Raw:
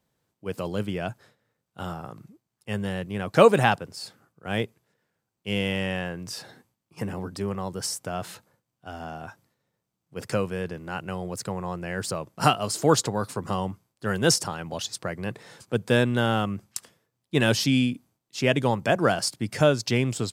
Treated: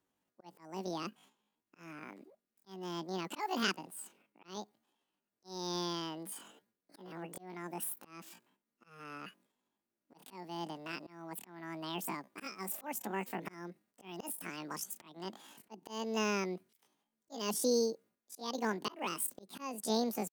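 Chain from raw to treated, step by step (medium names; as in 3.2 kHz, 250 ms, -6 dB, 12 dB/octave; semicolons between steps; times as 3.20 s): pitch shift +10.5 st; dynamic bell 1.5 kHz, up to -5 dB, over -35 dBFS, Q 0.96; slow attack 339 ms; trim -8 dB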